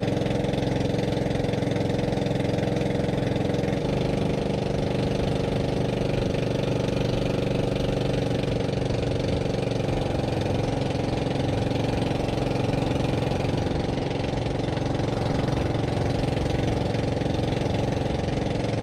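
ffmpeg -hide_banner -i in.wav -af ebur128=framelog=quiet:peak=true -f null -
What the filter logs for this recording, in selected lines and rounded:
Integrated loudness:
  I:         -25.7 LUFS
  Threshold: -35.7 LUFS
Loudness range:
  LRA:         0.6 LU
  Threshold: -45.7 LUFS
  LRA low:   -26.0 LUFS
  LRA high:  -25.5 LUFS
True peak:
  Peak:      -12.5 dBFS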